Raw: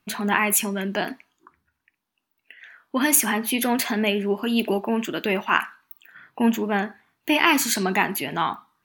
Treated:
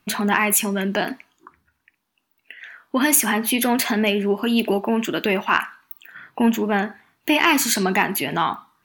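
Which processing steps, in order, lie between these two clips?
in parallel at 0 dB: downward compressor, threshold −27 dBFS, peak gain reduction 13.5 dB
on the sum: soft clipping −2 dBFS, distortion −28 dB

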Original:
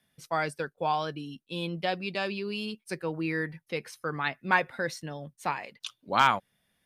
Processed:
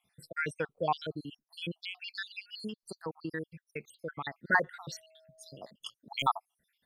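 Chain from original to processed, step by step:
time-frequency cells dropped at random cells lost 70%
0:02.67–0:04.34: downward compressor 1.5 to 1, threshold −42 dBFS, peak gain reduction 5.5 dB
0:04.91–0:05.71: steady tone 640 Hz −60 dBFS

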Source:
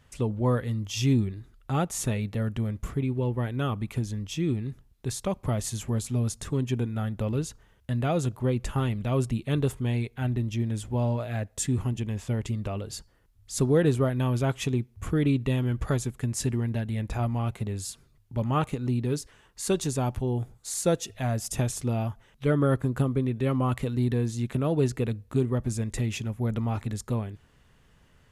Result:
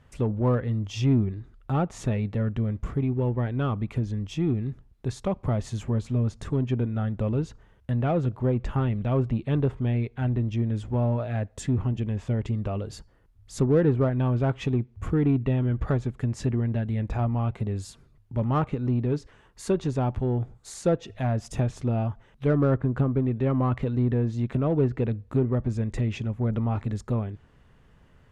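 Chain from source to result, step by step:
treble cut that deepens with the level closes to 2,200 Hz, closed at −20 dBFS
high-shelf EQ 2,800 Hz −12 dB
in parallel at −5.5 dB: soft clipping −28.5 dBFS, distortion −8 dB

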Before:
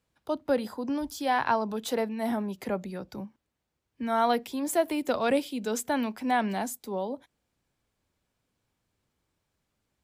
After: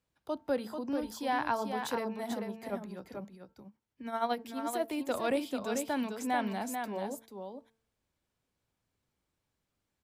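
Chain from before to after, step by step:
hum removal 224.9 Hz, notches 7
0:02.24–0:04.93: amplitude tremolo 12 Hz, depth 60%
single-tap delay 441 ms −6 dB
level −5.5 dB

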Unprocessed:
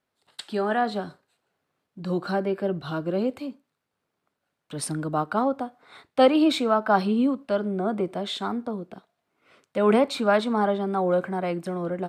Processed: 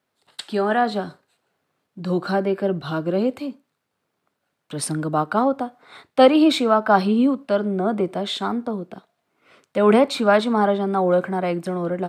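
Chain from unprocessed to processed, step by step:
high-pass filter 75 Hz
level +4.5 dB

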